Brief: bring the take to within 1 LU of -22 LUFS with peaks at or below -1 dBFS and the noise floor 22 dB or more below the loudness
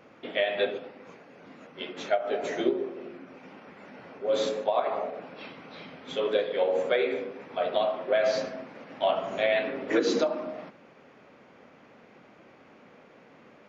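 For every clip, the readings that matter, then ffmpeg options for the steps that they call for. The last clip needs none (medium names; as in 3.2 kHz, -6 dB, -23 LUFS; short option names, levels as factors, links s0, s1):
loudness -28.5 LUFS; peak level -13.0 dBFS; loudness target -22.0 LUFS
-> -af "volume=2.11"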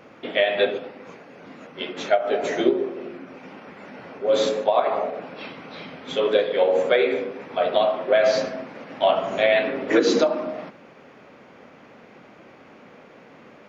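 loudness -22.0 LUFS; peak level -6.5 dBFS; noise floor -49 dBFS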